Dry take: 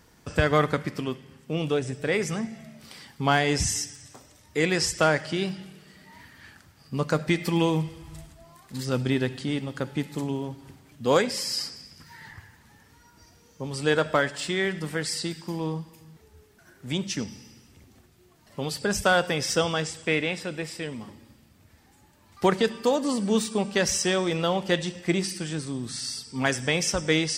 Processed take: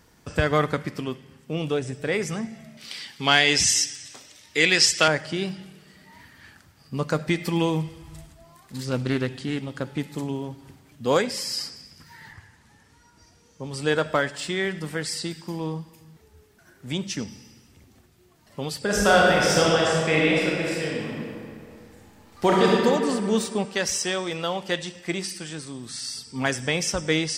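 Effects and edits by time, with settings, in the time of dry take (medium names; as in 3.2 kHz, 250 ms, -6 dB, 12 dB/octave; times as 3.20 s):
2.77–5.08 s: frequency weighting D
8.80–9.98 s: loudspeaker Doppler distortion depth 0.26 ms
12.33–13.73 s: Chebyshev low-pass 9.2 kHz
18.81–22.75 s: reverb throw, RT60 2.4 s, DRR -4.5 dB
23.65–26.15 s: bass shelf 420 Hz -7 dB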